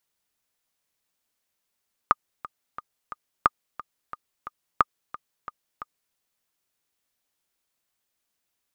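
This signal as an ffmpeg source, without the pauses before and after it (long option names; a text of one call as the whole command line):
ffmpeg -f lavfi -i "aevalsrc='pow(10,(-3.5-18*gte(mod(t,4*60/178),60/178))/20)*sin(2*PI*1220*mod(t,60/178))*exp(-6.91*mod(t,60/178)/0.03)':duration=4.04:sample_rate=44100" out.wav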